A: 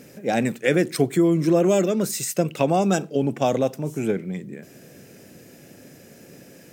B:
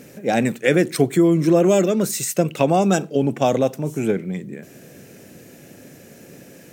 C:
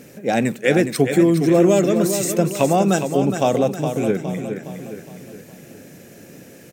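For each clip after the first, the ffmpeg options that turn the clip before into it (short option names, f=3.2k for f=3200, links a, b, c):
-af "bandreject=f=5k:w=17,volume=3dB"
-af "aecho=1:1:414|828|1242|1656|2070:0.398|0.187|0.0879|0.0413|0.0194"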